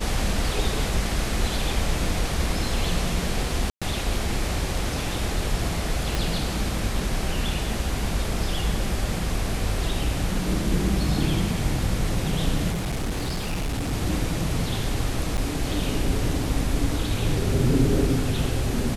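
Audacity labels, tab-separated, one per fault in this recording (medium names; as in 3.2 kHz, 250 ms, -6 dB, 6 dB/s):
3.700000	3.820000	dropout 116 ms
6.150000	6.150000	pop
12.710000	13.930000	clipped -23 dBFS
15.370000	15.380000	dropout 8.8 ms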